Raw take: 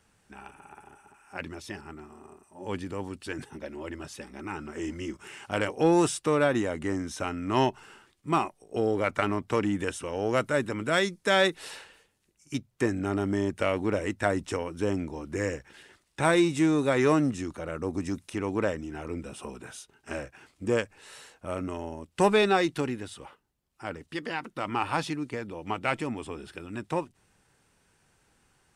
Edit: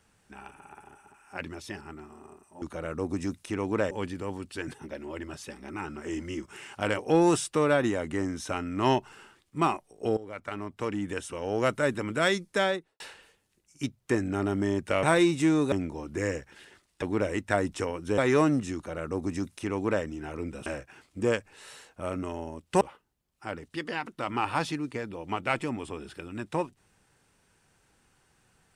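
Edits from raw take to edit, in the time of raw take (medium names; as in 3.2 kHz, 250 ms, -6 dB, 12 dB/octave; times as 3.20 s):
8.88–10.36 s: fade in linear, from -17.5 dB
11.18–11.71 s: studio fade out
13.74–14.90 s: swap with 16.20–16.89 s
17.46–18.75 s: copy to 2.62 s
19.37–20.11 s: delete
22.26–23.19 s: delete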